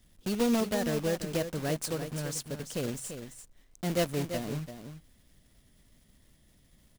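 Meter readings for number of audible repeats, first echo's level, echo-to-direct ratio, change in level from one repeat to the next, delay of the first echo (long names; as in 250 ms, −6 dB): 1, −9.0 dB, −9.0 dB, repeats not evenly spaced, 340 ms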